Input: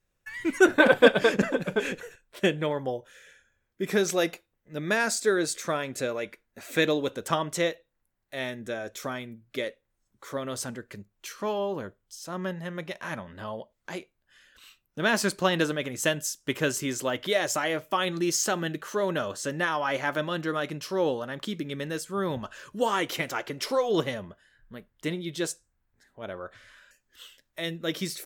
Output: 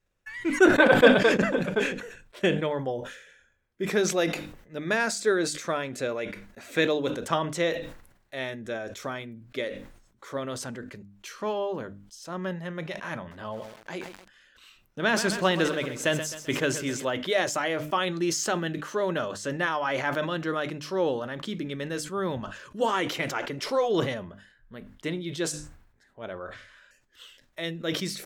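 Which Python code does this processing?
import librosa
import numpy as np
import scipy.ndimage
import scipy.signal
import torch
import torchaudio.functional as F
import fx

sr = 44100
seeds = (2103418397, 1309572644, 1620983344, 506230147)

y = fx.echo_crushed(x, sr, ms=130, feedback_pct=55, bits=7, wet_db=-11.5, at=(13.18, 17.05))
y = fx.high_shelf(y, sr, hz=9300.0, db=-11.5)
y = fx.hum_notches(y, sr, base_hz=50, count=6)
y = fx.sustainer(y, sr, db_per_s=76.0)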